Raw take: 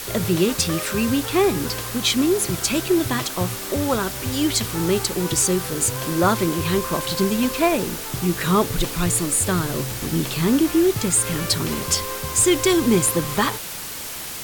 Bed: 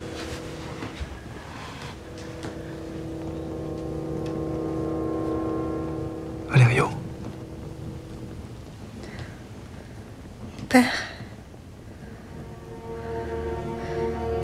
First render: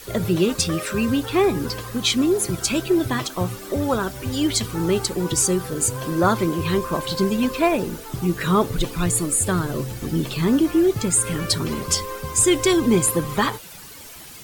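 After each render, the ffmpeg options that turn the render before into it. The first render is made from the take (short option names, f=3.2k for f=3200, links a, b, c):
-af "afftdn=nr=11:nf=-32"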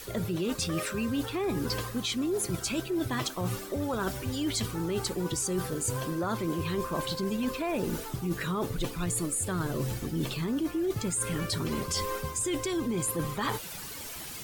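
-af "alimiter=limit=-13dB:level=0:latency=1:release=11,areverse,acompressor=threshold=-28dB:ratio=6,areverse"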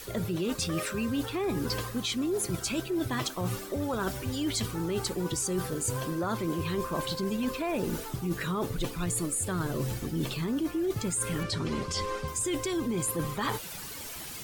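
-filter_complex "[0:a]asettb=1/sr,asplit=3[a][b][c];[a]atrim=end=11.434[d];[b]atrim=start=11.43:end=12.28,asetpts=PTS-STARTPTS,afade=t=in:d=0.004:c=qsin,afade=t=out:st=0.846:d=0.004:c=qsin,lowpass=6.5k[e];[c]atrim=start=12.276[f];[d][e]acrossfade=d=0.004:c1=hsin:c2=qsin[g];[g][f]acrossfade=d=0.004:c1=qsin:c2=hsin"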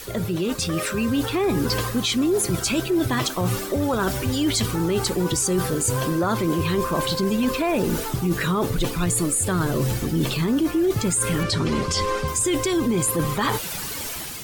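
-filter_complex "[0:a]dynaudnorm=f=670:g=3:m=4.5dB,asplit=2[a][b];[b]alimiter=limit=-22.5dB:level=0:latency=1:release=34,volume=0dB[c];[a][c]amix=inputs=2:normalize=0"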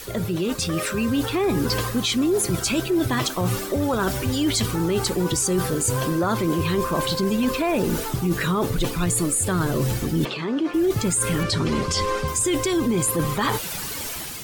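-filter_complex "[0:a]asplit=3[a][b][c];[a]afade=t=out:st=10.24:d=0.02[d];[b]highpass=280,lowpass=3.6k,afade=t=in:st=10.24:d=0.02,afade=t=out:st=10.73:d=0.02[e];[c]afade=t=in:st=10.73:d=0.02[f];[d][e][f]amix=inputs=3:normalize=0"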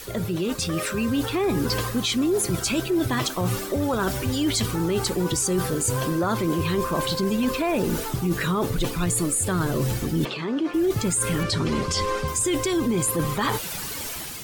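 -af "volume=-1.5dB"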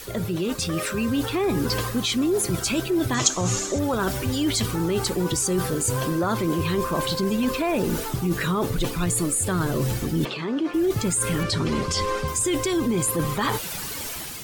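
-filter_complex "[0:a]asettb=1/sr,asplit=3[a][b][c];[a]atrim=end=3.144[d];[b]atrim=start=3.14:end=3.79,asetpts=PTS-STARTPTS,afade=t=in:d=0.004:c=qsin,afade=t=out:st=0.646:d=0.004:c=qsin,lowpass=f=6.8k:t=q:w=7.1[e];[c]atrim=start=3.786[f];[d][e]acrossfade=d=0.004:c1=hsin:c2=qsin[g];[g][f]acrossfade=d=0.004:c1=qsin:c2=hsin"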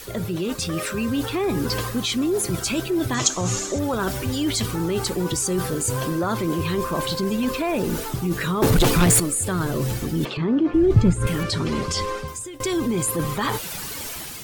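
-filter_complex "[0:a]asettb=1/sr,asplit=3[a][b][c];[a]atrim=end=8.624[d];[b]atrim=start=8.62:end=9.2,asetpts=PTS-STARTPTS,afade=t=in:d=0.004:c=qsin,afade=t=out:st=0.576:d=0.004:c=qsin,aeval=exprs='0.251*sin(PI/2*2.51*val(0)/0.251)':c=same[e];[c]atrim=start=9.196[f];[d][e]acrossfade=d=0.004:c1=hsin:c2=qsin[g];[g][f]acrossfade=d=0.004:c1=qsin:c2=hsin,asettb=1/sr,asplit=3[h][i][j];[h]atrim=end=10.374[k];[i]atrim=start=10.37:end=11.27,asetpts=PTS-STARTPTS,afade=t=in:d=0.004:c=qsin,afade=t=out:st=0.896:d=0.004:c=qsin,aemphasis=mode=reproduction:type=riaa[l];[j]atrim=start=11.266[m];[k][l]acrossfade=d=0.004:c1=hsin:c2=qsin[n];[n][m]acrossfade=d=0.004:c1=qsin:c2=hsin,asplit=2[o][p];[o]atrim=end=12.6,asetpts=PTS-STARTPTS,afade=t=out:st=11.96:d=0.64:silence=0.0794328[q];[p]atrim=start=12.6,asetpts=PTS-STARTPTS,afade=t=in:d=0.004:c=hsin:silence=0.0794328[r];[q][r]concat=n=2:v=0:a=1"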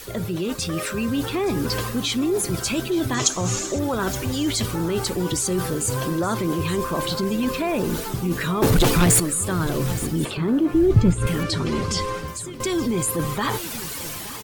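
-af "aecho=1:1:872:0.168"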